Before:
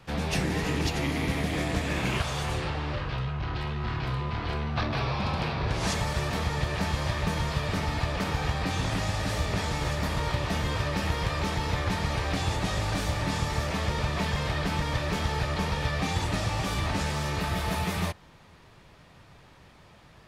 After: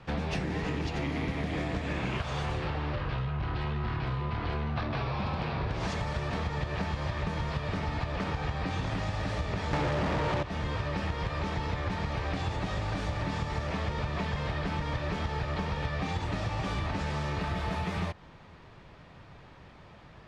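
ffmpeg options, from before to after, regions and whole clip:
-filter_complex "[0:a]asettb=1/sr,asplit=3[s0][s1][s2];[s0]atrim=end=9.734[s3];[s1]atrim=start=9.73:end=10.43,asetpts=PTS-STARTPTS,afade=t=in:d=0.004:c=qsin,afade=t=out:st=0.696:d=0.004:c=qsin,tiltshelf=f=650:g=8.5,acrusher=bits=5:mix=0:aa=0.5,asplit=2[s4][s5];[s5]highpass=f=720:p=1,volume=35.5,asoftclip=type=tanh:threshold=0.355[s6];[s4][s6]amix=inputs=2:normalize=0,lowpass=f=4200:p=1,volume=0.501[s7];[s2]atrim=start=10.426[s8];[s3][s7]acrossfade=d=0.004:c1=hsin:c2=qsin[s9];[s9][s8]acrossfade=d=0.004:c1=qsin:c2=hsin,lowpass=7600,highshelf=f=4700:g=-11.5,acompressor=threshold=0.0282:ratio=6,volume=1.33"

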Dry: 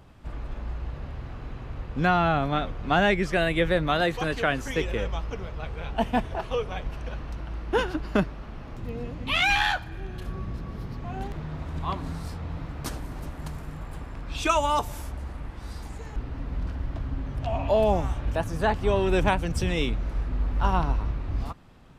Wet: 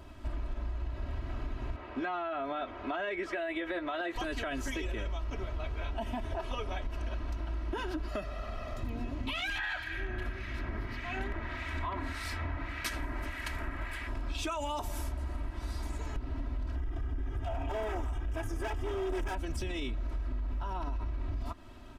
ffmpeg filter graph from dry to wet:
-filter_complex "[0:a]asettb=1/sr,asplit=3[s0][s1][s2];[s0]atrim=end=1.764[s3];[s1]atrim=start=1.76:end=4.16,asetpts=PTS-STARTPTS,afade=t=in:d=0.004:c=qsin,afade=t=out:st=2.396:d=0.004:c=qsin,highpass=f=120:p=1,bass=f=250:g=-12,treble=f=4000:g=-13,asplit=2[s4][s5];[s5]adelay=12,volume=0.299[s6];[s4][s6]amix=inputs=2:normalize=0,atrim=end_sample=105840[s7];[s2]atrim=start=4.156[s8];[s3][s7]acrossfade=d=0.004:c1=hsin:c2=qsin[s9];[s9][s8]acrossfade=d=0.004:c1=qsin:c2=hsin,asettb=1/sr,asplit=3[s10][s11][s12];[s10]atrim=end=8.084[s13];[s11]atrim=start=8.08:end=8.83,asetpts=PTS-STARTPTS,afade=t=in:d=0.004:c=qsin,afade=t=out:st=0.746:d=0.004:c=qsin,lowshelf=f=150:g=-9,aecho=1:1:1.6:0.71,atrim=end_sample=33075[s14];[s12]atrim=start=8.826[s15];[s13][s14]acrossfade=d=0.004:c1=hsin:c2=qsin[s16];[s16][s15]acrossfade=d=0.004:c1=qsin:c2=hsin,asettb=1/sr,asplit=3[s17][s18][s19];[s17]atrim=end=9.584[s20];[s18]atrim=start=9.58:end=14.08,asetpts=PTS-STARTPTS,afade=t=in:d=0.004:c=qsin,afade=t=out:st=4.496:d=0.004:c=qsin,equalizer=f=2000:t=o:w=1.3:g=15,acrossover=split=1700[s21][s22];[s21]aeval=exprs='val(0)*(1-0.7/2+0.7/2*cos(2*PI*1.7*n/s))':c=same[s23];[s22]aeval=exprs='val(0)*(1-0.7/2-0.7/2*cos(2*PI*1.7*n/s))':c=same[s24];[s23][s24]amix=inputs=2:normalize=0[s25];[s19]atrim=start=14.076[s26];[s20][s25]acrossfade=d=0.004:c1=hsin:c2=qsin[s27];[s27][s26]acrossfade=d=0.004:c1=qsin:c2=hsin,asettb=1/sr,asplit=3[s28][s29][s30];[s28]atrim=end=16.764[s31];[s29]atrim=start=16.76:end=19.35,asetpts=PTS-STARTPTS,afade=t=in:d=0.004:c=qsin,afade=t=out:st=2.586:d=0.004:c=qsin,aecho=1:1:2.5:0.96,atrim=end_sample=114219,asoftclip=type=hard:threshold=0.0708,equalizer=f=4200:t=o:w=0.27:g=-13.5[s32];[s30]atrim=start=19.346[s33];[s31][s32]acrossfade=d=0.004:c1=hsin:c2=qsin[s34];[s34][s33]acrossfade=d=0.004:c1=qsin:c2=hsin,aecho=1:1:3.1:0.99,alimiter=limit=0.1:level=0:latency=1:release=52,acompressor=threshold=0.0251:ratio=6"

